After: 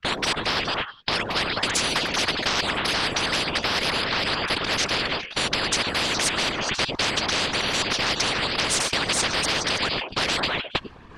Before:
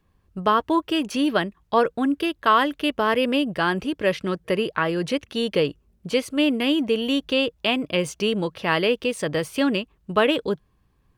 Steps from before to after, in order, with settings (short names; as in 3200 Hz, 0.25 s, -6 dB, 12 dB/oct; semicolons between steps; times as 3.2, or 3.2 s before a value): slices in reverse order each 0.326 s, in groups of 3; reverse; upward compressor, threshold -28 dBFS; reverse; delay with a stepping band-pass 0.104 s, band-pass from 280 Hz, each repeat 1.4 oct, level -4 dB; whisperiser; gate -30 dBFS, range -25 dB; overdrive pedal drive 9 dB, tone 5000 Hz, clips at -4.5 dBFS; in parallel at 0 dB: limiter -18 dBFS, peak gain reduction 12.5 dB; on the sum: air absorption 100 m; spectral compressor 10:1; gain -5 dB